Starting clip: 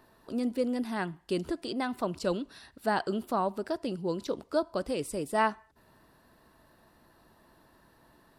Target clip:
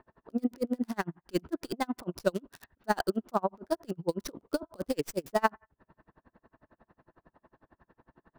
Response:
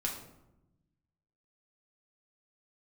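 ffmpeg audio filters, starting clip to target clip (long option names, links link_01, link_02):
-filter_complex "[0:a]lowpass=frequency=6100:width_type=q:width=4.4,acrossover=split=2200[link_01][link_02];[link_02]acrusher=bits=4:dc=4:mix=0:aa=0.000001[link_03];[link_01][link_03]amix=inputs=2:normalize=0,aeval=exprs='val(0)*pow(10,-36*(0.5-0.5*cos(2*PI*11*n/s))/20)':channel_layout=same,volume=5.5dB"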